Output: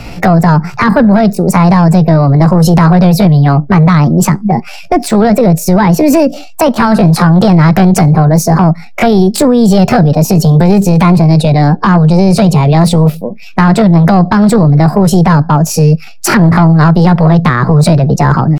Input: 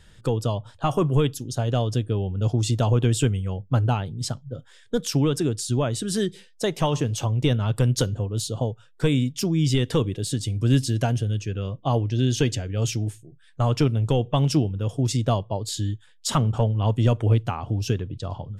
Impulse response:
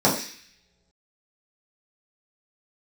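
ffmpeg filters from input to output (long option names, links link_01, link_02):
-filter_complex "[0:a]bass=frequency=250:gain=-8,treble=frequency=4000:gain=-13,acrossover=split=160[link_01][link_02];[link_02]acompressor=threshold=-39dB:ratio=4[link_03];[link_01][link_03]amix=inputs=2:normalize=0,asetrate=66075,aresample=44100,atempo=0.66742,asplit=2[link_04][link_05];[link_05]adynamicsmooth=sensitivity=3:basefreq=1900,volume=1dB[link_06];[link_04][link_06]amix=inputs=2:normalize=0,apsyclip=30dB,volume=-2dB"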